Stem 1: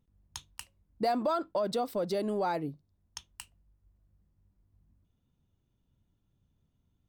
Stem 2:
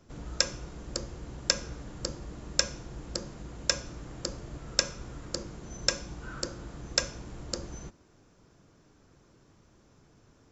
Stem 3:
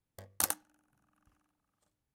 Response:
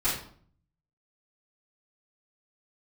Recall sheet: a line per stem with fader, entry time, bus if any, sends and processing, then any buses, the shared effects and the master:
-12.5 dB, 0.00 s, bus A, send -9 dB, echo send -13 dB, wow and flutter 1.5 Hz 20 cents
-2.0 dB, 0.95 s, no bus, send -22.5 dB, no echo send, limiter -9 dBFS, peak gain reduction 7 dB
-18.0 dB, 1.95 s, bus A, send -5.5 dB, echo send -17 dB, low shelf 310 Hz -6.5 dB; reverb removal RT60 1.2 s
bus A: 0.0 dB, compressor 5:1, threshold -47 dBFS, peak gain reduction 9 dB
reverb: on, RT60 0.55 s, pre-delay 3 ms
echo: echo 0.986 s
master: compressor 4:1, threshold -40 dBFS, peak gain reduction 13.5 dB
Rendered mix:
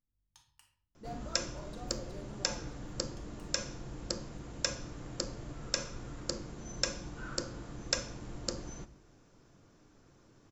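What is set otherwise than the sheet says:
stem 1 -12.5 dB -> -22.0 dB; stem 3: muted; master: missing compressor 4:1, threshold -40 dBFS, peak gain reduction 13.5 dB

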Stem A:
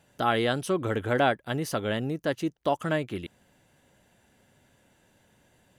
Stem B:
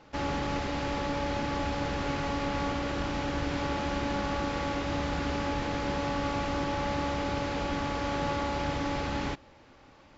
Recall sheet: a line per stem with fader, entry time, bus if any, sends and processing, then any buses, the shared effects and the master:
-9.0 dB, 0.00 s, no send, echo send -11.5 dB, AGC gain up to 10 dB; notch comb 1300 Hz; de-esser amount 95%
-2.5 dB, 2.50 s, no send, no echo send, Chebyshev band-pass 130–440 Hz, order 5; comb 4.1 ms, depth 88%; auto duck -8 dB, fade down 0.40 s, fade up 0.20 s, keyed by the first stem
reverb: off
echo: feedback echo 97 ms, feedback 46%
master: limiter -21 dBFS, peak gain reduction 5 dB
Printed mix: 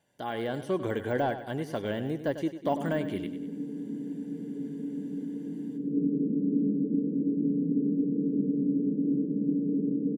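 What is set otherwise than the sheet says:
stem B -2.5 dB -> +5.5 dB; master: missing limiter -21 dBFS, peak gain reduction 5 dB

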